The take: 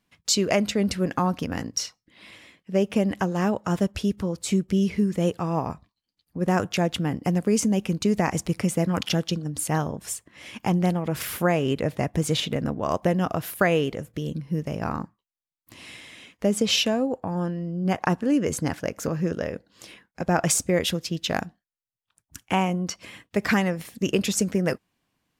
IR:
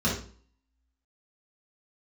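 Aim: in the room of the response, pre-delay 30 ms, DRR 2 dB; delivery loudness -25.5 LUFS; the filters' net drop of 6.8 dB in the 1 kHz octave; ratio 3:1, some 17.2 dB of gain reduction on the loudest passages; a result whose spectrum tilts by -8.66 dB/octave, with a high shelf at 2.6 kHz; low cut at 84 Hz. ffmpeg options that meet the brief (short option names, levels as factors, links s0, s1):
-filter_complex "[0:a]highpass=84,equalizer=f=1000:t=o:g=-9,highshelf=f=2600:g=-6.5,acompressor=threshold=0.00708:ratio=3,asplit=2[s0][s1];[1:a]atrim=start_sample=2205,adelay=30[s2];[s1][s2]afir=irnorm=-1:irlink=0,volume=0.211[s3];[s0][s3]amix=inputs=2:normalize=0,volume=2.82"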